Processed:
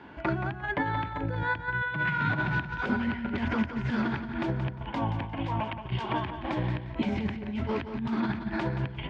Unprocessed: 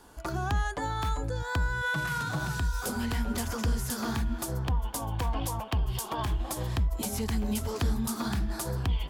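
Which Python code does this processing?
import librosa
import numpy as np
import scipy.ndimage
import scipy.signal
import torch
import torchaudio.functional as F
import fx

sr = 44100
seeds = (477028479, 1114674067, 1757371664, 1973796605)

y = fx.over_compress(x, sr, threshold_db=-33.0, ratio=-0.5)
y = fx.cabinet(y, sr, low_hz=120.0, low_slope=12, high_hz=2700.0, hz=(470.0, 740.0, 1200.0, 2200.0), db=(-9, -6, -9, 4))
y = fx.echo_feedback(y, sr, ms=176, feedback_pct=22, wet_db=-9.5)
y = y * librosa.db_to_amplitude(7.0)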